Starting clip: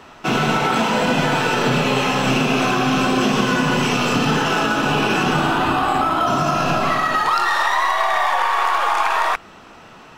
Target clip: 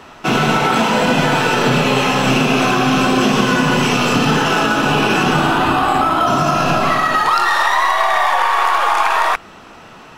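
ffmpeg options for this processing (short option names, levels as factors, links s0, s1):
-af "equalizer=f=11000:w=3.3:g=3.5,volume=1.5"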